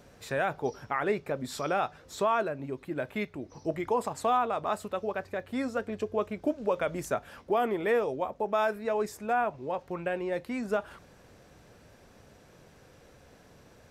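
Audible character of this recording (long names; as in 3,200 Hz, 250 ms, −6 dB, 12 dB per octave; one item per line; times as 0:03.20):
background noise floor −57 dBFS
spectral slope −4.0 dB per octave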